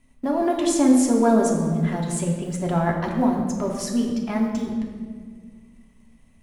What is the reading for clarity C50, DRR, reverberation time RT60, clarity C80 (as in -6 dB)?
4.0 dB, -1.5 dB, 1.8 s, 5.5 dB